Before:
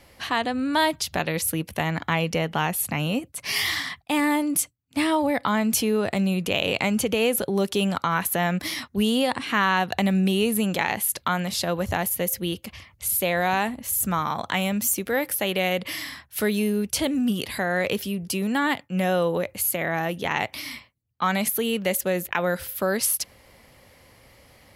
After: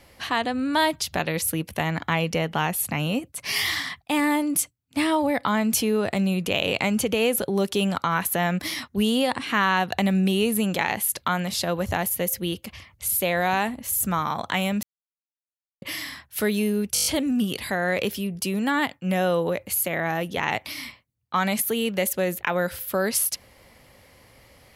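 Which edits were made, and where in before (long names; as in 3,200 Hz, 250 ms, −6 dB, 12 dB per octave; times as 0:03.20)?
0:14.83–0:15.82: silence
0:16.94: stutter 0.02 s, 7 plays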